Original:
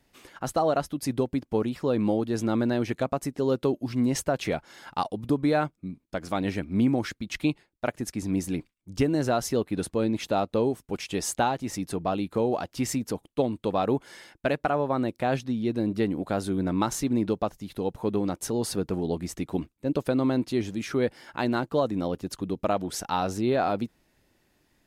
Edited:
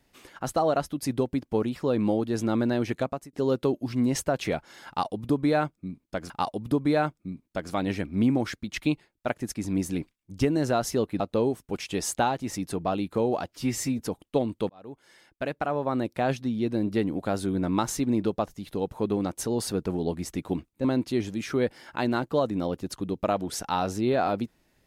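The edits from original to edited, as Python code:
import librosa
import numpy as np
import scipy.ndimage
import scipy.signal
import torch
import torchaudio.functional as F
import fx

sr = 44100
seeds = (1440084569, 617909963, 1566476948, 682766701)

y = fx.edit(x, sr, fx.fade_out_span(start_s=3.01, length_s=0.32),
    fx.repeat(start_s=4.88, length_s=1.42, count=2),
    fx.cut(start_s=9.78, length_s=0.62),
    fx.stretch_span(start_s=12.7, length_s=0.33, factor=1.5),
    fx.fade_in_span(start_s=13.73, length_s=1.37),
    fx.cut(start_s=19.88, length_s=0.37), tone=tone)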